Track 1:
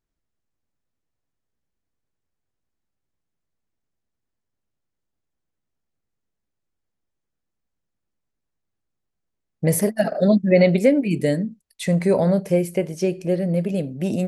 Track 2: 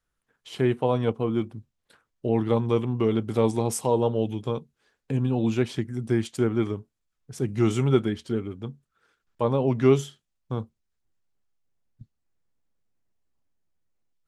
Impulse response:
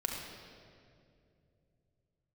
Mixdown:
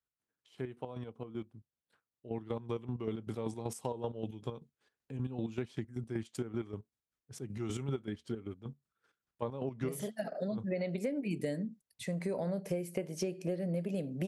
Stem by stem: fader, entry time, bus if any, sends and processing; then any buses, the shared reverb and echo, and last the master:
−3.0 dB, 0.20 s, no send, high-pass filter 130 Hz; automatic ducking −11 dB, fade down 0.35 s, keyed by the second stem
0:02.19 −14 dB → 0:02.97 −7 dB, 0.00 s, no send, square-wave tremolo 5.2 Hz, depth 65%, duty 40%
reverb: not used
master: high-pass filter 56 Hz; downward compressor 8 to 1, threshold −32 dBFS, peak gain reduction 15 dB

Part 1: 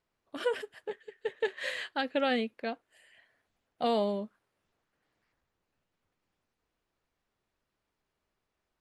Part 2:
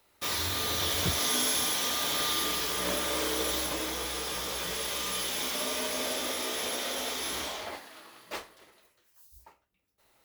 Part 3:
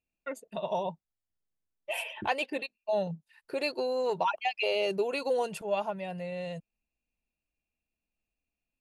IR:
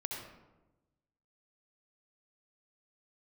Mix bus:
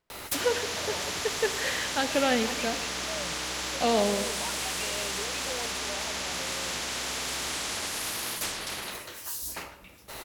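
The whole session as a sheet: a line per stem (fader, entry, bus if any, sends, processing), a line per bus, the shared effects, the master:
+1.0 dB, 0.00 s, send −7.5 dB, no processing
+1.0 dB, 0.10 s, send −8 dB, treble cut that deepens with the level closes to 1,900 Hz, closed at −28 dBFS; every bin compressed towards the loudest bin 10 to 1
−18.0 dB, 0.20 s, no send, spectral tilt +2 dB per octave; leveller curve on the samples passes 3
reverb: on, RT60 1.1 s, pre-delay 60 ms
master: no processing

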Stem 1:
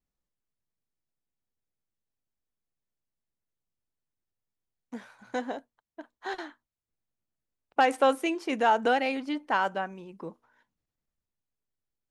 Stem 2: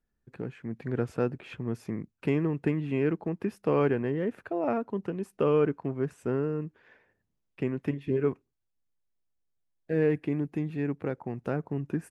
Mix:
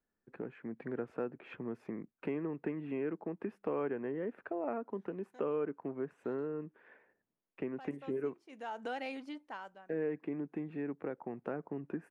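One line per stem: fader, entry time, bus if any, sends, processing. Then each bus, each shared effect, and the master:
−7.5 dB, 0.00 s, no send, automatic ducking −19 dB, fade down 0.75 s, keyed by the second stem
−0.5 dB, 0.00 s, no send, three-way crossover with the lows and the highs turned down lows −19 dB, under 200 Hz, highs −19 dB, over 2,500 Hz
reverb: not used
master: downward compressor 2 to 1, threshold −39 dBFS, peak gain reduction 10 dB

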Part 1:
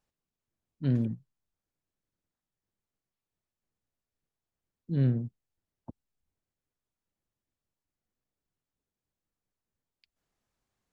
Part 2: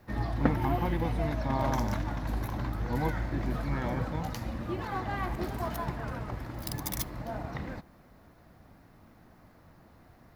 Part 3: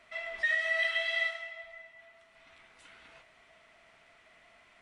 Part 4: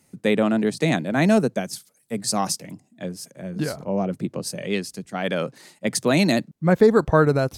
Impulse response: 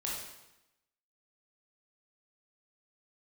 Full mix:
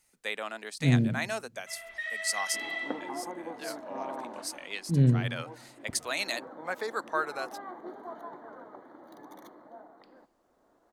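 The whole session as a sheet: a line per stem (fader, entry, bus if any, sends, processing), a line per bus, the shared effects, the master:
+1.5 dB, 0.00 s, send −9.5 dB, parametric band 1,100 Hz −14.5 dB 0.63 octaves
−4.5 dB, 2.45 s, no send, high-pass filter 300 Hz 24 dB per octave; pitch vibrato 0.58 Hz 13 cents; moving average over 17 samples; automatic ducking −9 dB, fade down 0.50 s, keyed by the first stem
−10.0 dB, 1.55 s, send −4.5 dB, no processing
−6.0 dB, 0.00 s, no send, high-pass filter 1,000 Hz 12 dB per octave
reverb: on, RT60 0.90 s, pre-delay 17 ms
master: no processing

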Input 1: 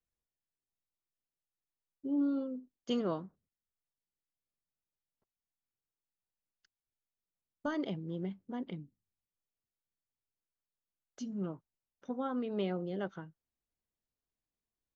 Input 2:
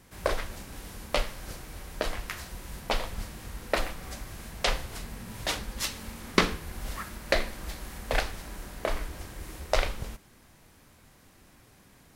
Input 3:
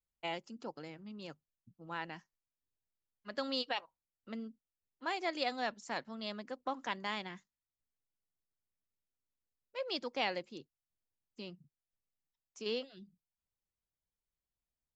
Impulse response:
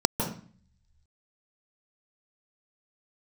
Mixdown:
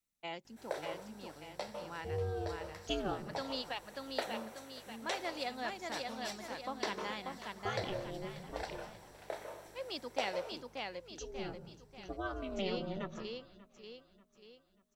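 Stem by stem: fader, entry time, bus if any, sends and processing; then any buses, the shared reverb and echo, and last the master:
+1.5 dB, 0.00 s, send −23.5 dB, echo send −19.5 dB, tilt shelving filter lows −6.5 dB, about 680 Hz; ring modulation 190 Hz; phaser whose notches keep moving one way falling 0.23 Hz
−14.5 dB, 0.45 s, send −12.5 dB, echo send −17 dB, high-pass filter 380 Hz 24 dB per octave; mains hum 50 Hz, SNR 19 dB; automatic ducking −14 dB, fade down 1.70 s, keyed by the first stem
−4.0 dB, 0.00 s, no send, echo send −3.5 dB, no processing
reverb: on, RT60 0.45 s, pre-delay 148 ms
echo: repeating echo 588 ms, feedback 45%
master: no processing

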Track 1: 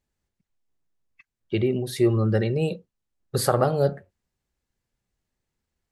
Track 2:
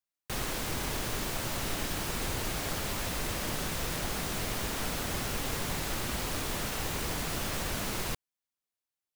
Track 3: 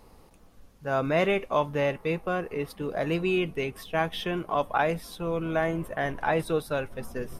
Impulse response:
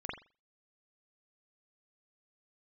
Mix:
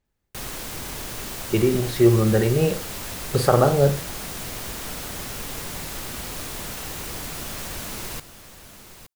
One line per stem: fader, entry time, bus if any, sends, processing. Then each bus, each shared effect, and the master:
+2.0 dB, 0.00 s, send −8.5 dB, no echo send, low-pass filter 3,700 Hz 6 dB per octave
−1.0 dB, 0.05 s, no send, echo send −12 dB, high-shelf EQ 5,600 Hz +5.5 dB
muted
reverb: on, pre-delay 42 ms
echo: single-tap delay 868 ms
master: no processing

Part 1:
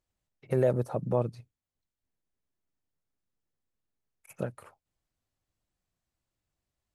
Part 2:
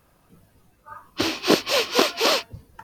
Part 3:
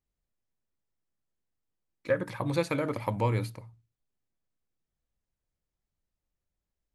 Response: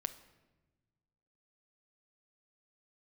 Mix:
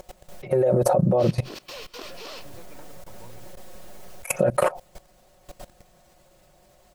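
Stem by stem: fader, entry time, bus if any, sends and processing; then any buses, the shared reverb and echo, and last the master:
+1.0 dB, 0.00 s, send −24 dB, parametric band 610 Hz +13.5 dB 0.8 octaves; comb filter 5.5 ms, depth 74%; envelope flattener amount 70%
−14.5 dB, 0.00 s, send −4 dB, no processing
−19.5 dB, 0.00 s, no send, no processing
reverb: on, RT60 1.2 s, pre-delay 7 ms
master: output level in coarse steps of 19 dB

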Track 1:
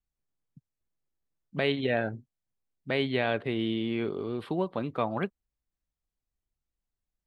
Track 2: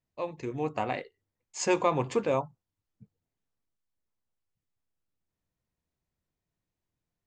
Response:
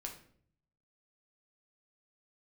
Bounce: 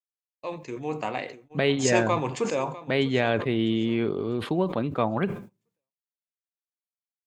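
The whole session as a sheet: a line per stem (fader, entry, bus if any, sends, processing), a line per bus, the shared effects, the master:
+2.0 dB, 0.00 s, send −21.5 dB, no echo send, low-shelf EQ 390 Hz +3.5 dB; downward expander −38 dBFS
−2.0 dB, 0.25 s, send −10 dB, echo send −15.5 dB, high-pass filter 130 Hz 12 dB per octave; high-shelf EQ 2,500 Hz +6 dB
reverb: on, RT60 0.55 s, pre-delay 6 ms
echo: repeating echo 650 ms, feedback 39%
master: noise gate −48 dBFS, range −44 dB; level that may fall only so fast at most 110 dB per second

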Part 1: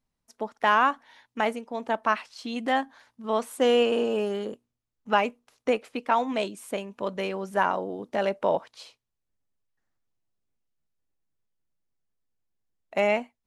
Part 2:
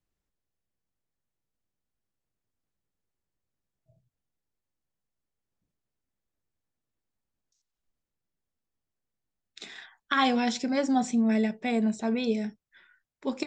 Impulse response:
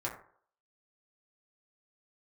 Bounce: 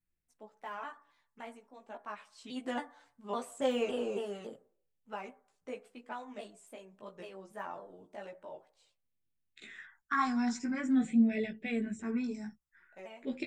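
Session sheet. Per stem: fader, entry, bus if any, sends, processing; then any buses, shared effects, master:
0:02.01 −18.5 dB → 0:02.54 −8.5 dB → 0:04.55 −8.5 dB → 0:04.77 −16.5 dB → 0:08.13 −16.5 dB → 0:08.49 −23 dB, 0.00 s, send −12.5 dB, de-essing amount 90%; parametric band 8,000 Hz +10.5 dB 0.28 octaves; pitch modulation by a square or saw wave saw down 3.6 Hz, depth 160 cents
−0.5 dB, 0.00 s, no send, all-pass phaser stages 4, 0.46 Hz, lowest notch 510–1,100 Hz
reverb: on, RT60 0.55 s, pre-delay 4 ms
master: multi-voice chorus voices 4, 0.34 Hz, delay 16 ms, depth 4.6 ms

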